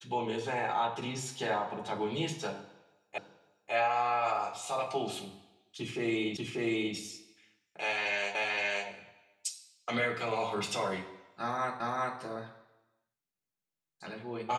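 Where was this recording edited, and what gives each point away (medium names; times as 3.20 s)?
3.18 s: repeat of the last 0.55 s
6.37 s: repeat of the last 0.59 s
8.35 s: repeat of the last 0.52 s
11.80 s: repeat of the last 0.39 s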